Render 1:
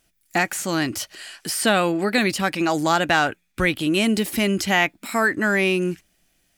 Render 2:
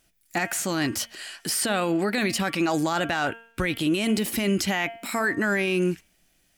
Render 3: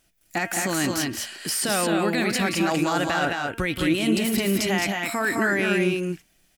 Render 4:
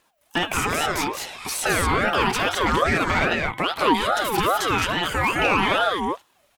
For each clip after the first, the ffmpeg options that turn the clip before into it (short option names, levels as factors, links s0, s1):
-af "bandreject=f=229.7:t=h:w=4,bandreject=f=459.4:t=h:w=4,bandreject=f=689.1:t=h:w=4,bandreject=f=918.8:t=h:w=4,bandreject=f=1148.5:t=h:w=4,bandreject=f=1378.2:t=h:w=4,bandreject=f=1607.9:t=h:w=4,bandreject=f=1837.6:t=h:w=4,bandreject=f=2067.3:t=h:w=4,bandreject=f=2297:t=h:w=4,bandreject=f=2526.7:t=h:w=4,bandreject=f=2756.4:t=h:w=4,bandreject=f=2986.1:t=h:w=4,bandreject=f=3215.8:t=h:w=4,bandreject=f=3445.5:t=h:w=4,alimiter=limit=0.168:level=0:latency=1:release=21"
-af "aecho=1:1:177.8|212.8:0.316|0.708"
-filter_complex "[0:a]aphaser=in_gain=1:out_gain=1:delay=2.1:decay=0.27:speed=1.8:type=sinusoidal,acrossover=split=350|2500[s0][s1][s2];[s1]aeval=exprs='0.237*sin(PI/2*1.58*val(0)/0.237)':c=same[s3];[s0][s3][s2]amix=inputs=3:normalize=0,aeval=exprs='val(0)*sin(2*PI*820*n/s+820*0.3/2.4*sin(2*PI*2.4*n/s))':c=same"